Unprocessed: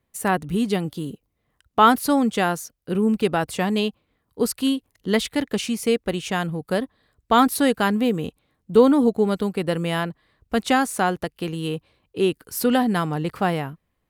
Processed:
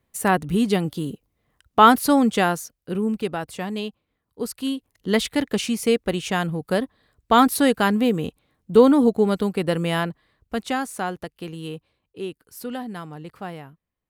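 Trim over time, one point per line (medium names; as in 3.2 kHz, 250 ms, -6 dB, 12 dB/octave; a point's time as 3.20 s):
2.37 s +2 dB
3.42 s -6.5 dB
4.49 s -6.5 dB
5.22 s +1 dB
10.09 s +1 dB
10.68 s -6 dB
11.70 s -6 dB
12.40 s -12 dB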